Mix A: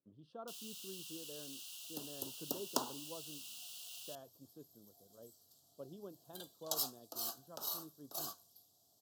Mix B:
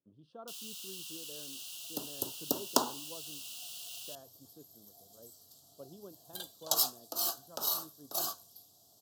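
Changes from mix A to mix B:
first sound +5.0 dB; second sound +8.5 dB

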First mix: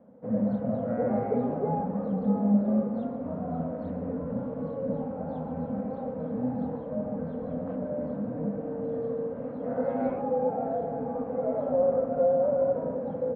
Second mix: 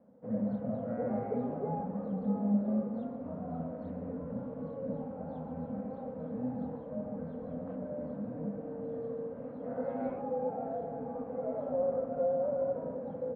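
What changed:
speech: send -6.0 dB; background -7.0 dB

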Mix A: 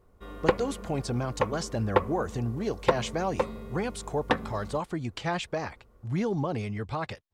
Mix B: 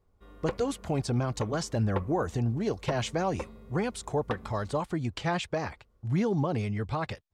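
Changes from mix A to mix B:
background -11.5 dB; master: add low shelf 180 Hz +4 dB

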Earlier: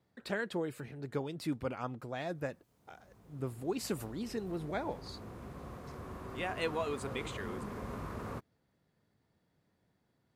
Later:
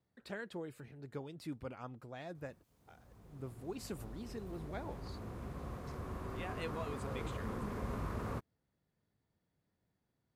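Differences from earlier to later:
speech -8.5 dB; master: add low shelf 75 Hz +8.5 dB

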